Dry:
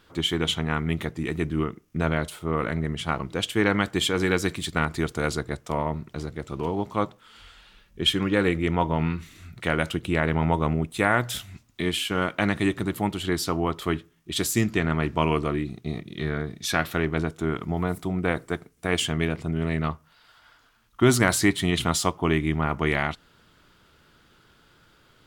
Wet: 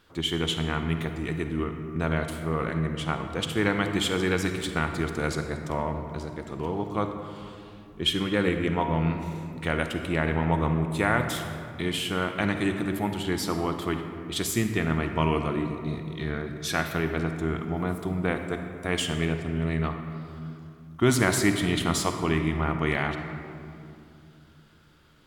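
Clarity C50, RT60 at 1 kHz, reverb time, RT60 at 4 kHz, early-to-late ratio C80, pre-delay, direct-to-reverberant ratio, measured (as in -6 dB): 6.5 dB, 2.3 s, 2.6 s, 1.3 s, 7.5 dB, 37 ms, 6.0 dB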